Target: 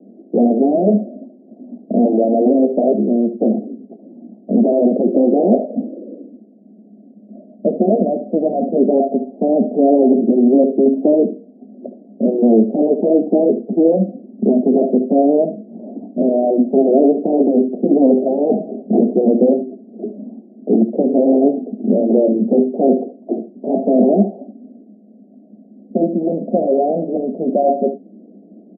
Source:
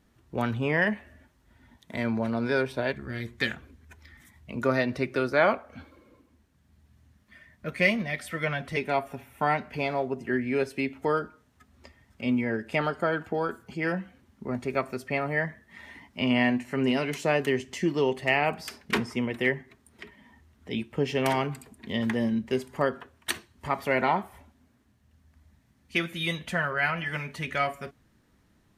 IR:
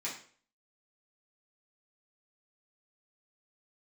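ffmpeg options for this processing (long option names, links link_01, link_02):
-filter_complex "[0:a]afftfilt=real='re*lt(hypot(re,im),0.355)':imag='im*lt(hypot(re,im),0.355)':win_size=1024:overlap=0.75,lowshelf=frequency=270:gain=7,asplit=2[link_01][link_02];[link_02]aeval=exprs='0.355*sin(PI/2*6.31*val(0)/0.355)':channel_layout=same,volume=-5dB[link_03];[link_01][link_03]amix=inputs=2:normalize=0,asuperpass=centerf=370:order=20:qfactor=0.72,aecho=1:1:71:0.251,volume=7dB"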